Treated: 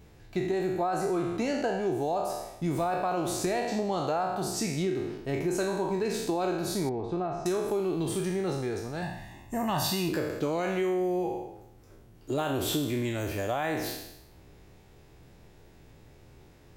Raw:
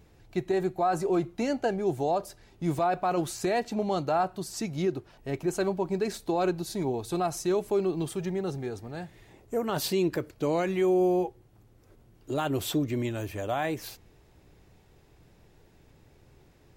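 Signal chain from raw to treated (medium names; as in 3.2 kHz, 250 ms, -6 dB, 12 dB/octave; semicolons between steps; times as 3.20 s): spectral sustain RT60 0.83 s; 9.02–10.09 s: comb 1.1 ms, depth 84%; compression, threshold -27 dBFS, peak gain reduction 7 dB; 6.89–7.46 s: tape spacing loss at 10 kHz 37 dB; trim +1.5 dB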